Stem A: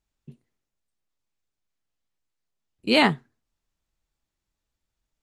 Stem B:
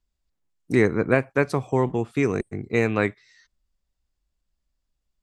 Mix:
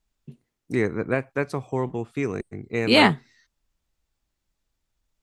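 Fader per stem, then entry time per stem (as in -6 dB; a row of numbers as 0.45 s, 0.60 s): +2.5 dB, -4.5 dB; 0.00 s, 0.00 s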